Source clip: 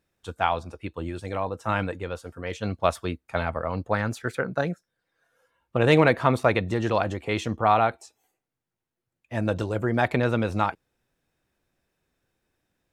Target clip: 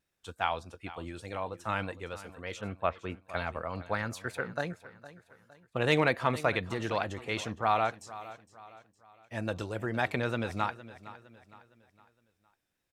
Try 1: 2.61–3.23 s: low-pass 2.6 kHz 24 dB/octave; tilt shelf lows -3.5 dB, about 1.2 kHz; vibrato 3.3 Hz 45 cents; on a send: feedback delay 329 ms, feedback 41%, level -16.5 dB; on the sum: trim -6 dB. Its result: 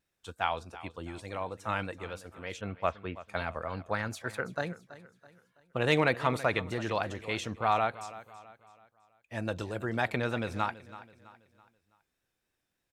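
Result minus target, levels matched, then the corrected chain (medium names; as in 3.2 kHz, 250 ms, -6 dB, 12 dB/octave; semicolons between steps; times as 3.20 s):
echo 132 ms early
2.61–3.23 s: low-pass 2.6 kHz 24 dB/octave; tilt shelf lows -3.5 dB, about 1.2 kHz; vibrato 3.3 Hz 45 cents; on a send: feedback delay 461 ms, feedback 41%, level -16.5 dB; on the sum: trim -6 dB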